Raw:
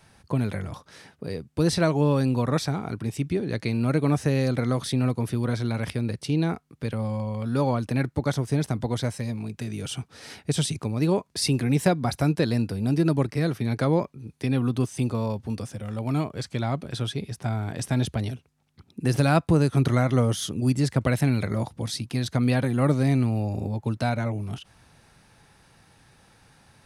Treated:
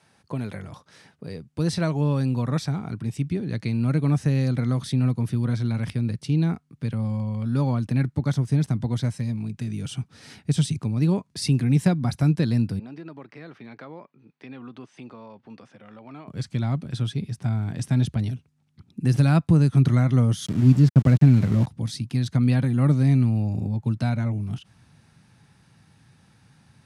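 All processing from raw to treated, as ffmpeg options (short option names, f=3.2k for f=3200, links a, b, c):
-filter_complex "[0:a]asettb=1/sr,asplit=3[a][b][c];[a]atrim=end=12.794[d];[b]atrim=start=12.79:end=16.28,asetpts=PTS-STARTPTS,afade=t=in:d=0.004:c=qsin,afade=t=out:st=3.486:d=0.004:c=qsin,highpass=480,lowpass=2.7k,acompressor=threshold=-38dB:ratio=2:attack=3.2:release=140:knee=1:detection=peak[e];[c]atrim=start=16.276[f];[d][e]acrossfade=d=0.004:c1=hsin:c2=qsin[g];[g][f]acrossfade=d=0.004:c1=qsin:c2=hsin,asettb=1/sr,asplit=3[h][i][j];[h]atrim=end=20.464[k];[i]atrim=start=20.46:end=21.67,asetpts=PTS-STARTPTS,afade=t=in:d=0.004:c=qsin,afade=t=out:st=1.206:d=0.004:c=qsin,lowpass=f=7.2k:w=0.5412,lowpass=f=7.2k:w=1.3066,tiltshelf=f=1.1k:g=4.5,aeval=exprs='val(0)*gte(abs(val(0)),0.0299)':c=same[l];[j]atrim=start=21.666[m];[k][l]acrossfade=d=0.004:c1=hsin:c2=qsin[n];[n][m]acrossfade=d=0.004:c1=qsin:c2=hsin,highpass=140,asubboost=boost=5.5:cutoff=190,lowpass=11k,volume=-3.5dB"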